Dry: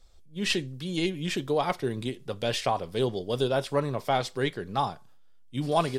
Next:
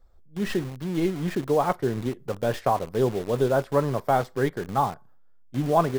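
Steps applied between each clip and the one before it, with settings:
flat-topped bell 5,100 Hz −15.5 dB 2.6 octaves
in parallel at −4.5 dB: bit reduction 6 bits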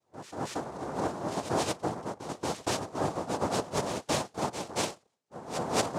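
cochlear-implant simulation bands 2
backwards echo 230 ms −9.5 dB
level −8 dB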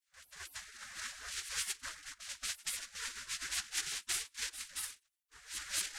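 gate on every frequency bin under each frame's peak −20 dB weak
level +4.5 dB

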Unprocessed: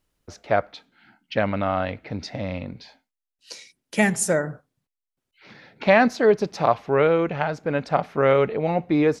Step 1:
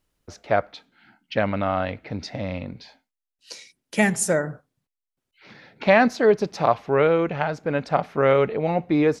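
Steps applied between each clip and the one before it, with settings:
no processing that can be heard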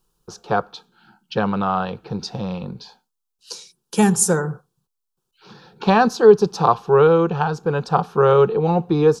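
phaser with its sweep stopped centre 410 Hz, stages 8
level +7.5 dB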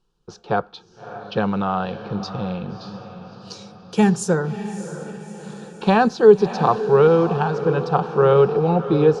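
low-pass filter 4,300 Hz 12 dB per octave
parametric band 1,100 Hz −3.5 dB 0.82 octaves
feedback delay with all-pass diffusion 625 ms, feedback 52%, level −11.5 dB

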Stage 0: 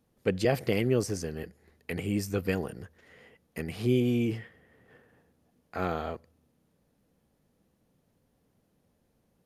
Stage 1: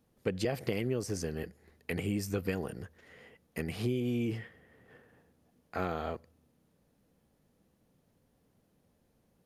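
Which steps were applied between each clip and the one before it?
downward compressor 6 to 1, threshold −28 dBFS, peak gain reduction 8.5 dB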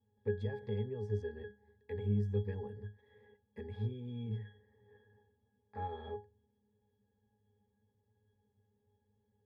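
parametric band 200 Hz −8 dB 1.2 octaves
resonances in every octave G#, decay 0.24 s
level +9.5 dB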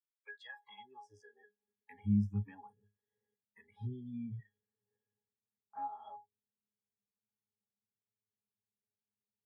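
noise reduction from a noise print of the clip's start 29 dB
high-pass filter sweep 2,700 Hz → 150 Hz, 0:00.14–0:01.96
level +1.5 dB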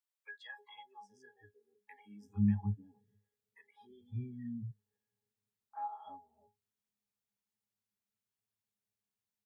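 multiband delay without the direct sound highs, lows 310 ms, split 410 Hz
level +1 dB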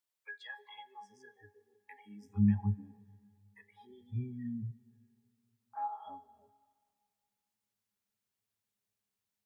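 dense smooth reverb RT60 2.2 s, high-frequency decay 0.8×, DRR 19 dB
level +3 dB

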